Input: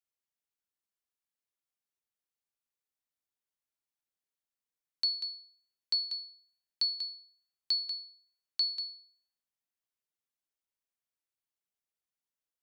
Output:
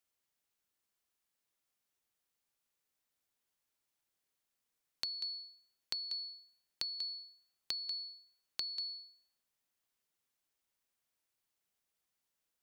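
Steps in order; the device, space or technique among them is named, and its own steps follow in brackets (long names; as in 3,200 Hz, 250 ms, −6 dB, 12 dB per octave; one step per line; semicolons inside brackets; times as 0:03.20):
serial compression, peaks first (downward compressor, threshold −38 dBFS, peak gain reduction 11.5 dB; downward compressor 2 to 1, threshold −47 dBFS, peak gain reduction 7 dB)
level +6.5 dB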